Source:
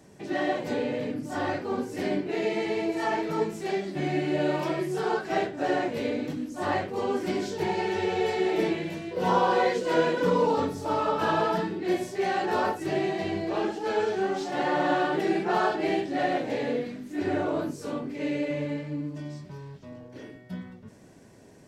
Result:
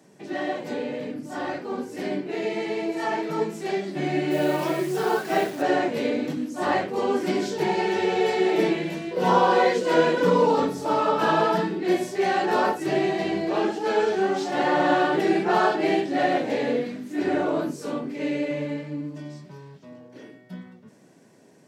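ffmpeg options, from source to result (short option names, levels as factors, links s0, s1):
-filter_complex "[0:a]asplit=3[s0][s1][s2];[s0]afade=t=out:st=4.3:d=0.02[s3];[s1]acrusher=bits=8:dc=4:mix=0:aa=0.000001,afade=t=in:st=4.3:d=0.02,afade=t=out:st=5.61:d=0.02[s4];[s2]afade=t=in:st=5.61:d=0.02[s5];[s3][s4][s5]amix=inputs=3:normalize=0,highpass=f=140:w=0.5412,highpass=f=140:w=1.3066,dynaudnorm=f=440:g=17:m=1.88,volume=0.891"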